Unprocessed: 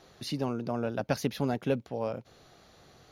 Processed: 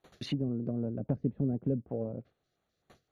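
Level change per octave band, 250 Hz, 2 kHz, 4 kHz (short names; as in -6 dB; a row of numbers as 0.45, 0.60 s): +0.5 dB, under -10 dB, n/a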